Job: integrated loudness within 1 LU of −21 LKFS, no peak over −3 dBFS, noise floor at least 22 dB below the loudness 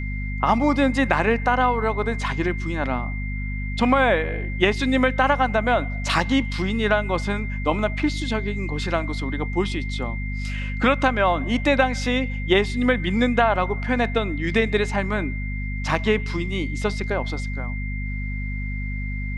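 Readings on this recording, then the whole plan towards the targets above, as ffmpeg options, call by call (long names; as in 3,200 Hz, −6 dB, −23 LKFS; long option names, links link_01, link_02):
mains hum 50 Hz; hum harmonics up to 250 Hz; level of the hum −25 dBFS; interfering tone 2,100 Hz; level of the tone −34 dBFS; integrated loudness −23.0 LKFS; sample peak −2.0 dBFS; target loudness −21.0 LKFS
→ -af "bandreject=frequency=50:width_type=h:width=4,bandreject=frequency=100:width_type=h:width=4,bandreject=frequency=150:width_type=h:width=4,bandreject=frequency=200:width_type=h:width=4,bandreject=frequency=250:width_type=h:width=4"
-af "bandreject=frequency=2100:width=30"
-af "volume=2dB,alimiter=limit=-3dB:level=0:latency=1"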